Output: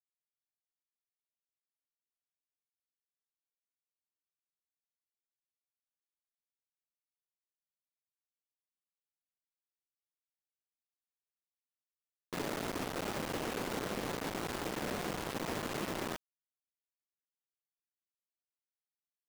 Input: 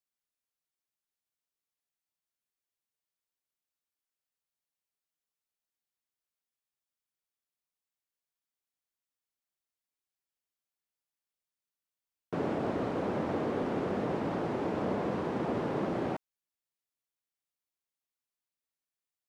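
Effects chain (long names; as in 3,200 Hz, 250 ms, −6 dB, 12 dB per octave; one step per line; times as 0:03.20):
bit reduction 5 bits
level −7 dB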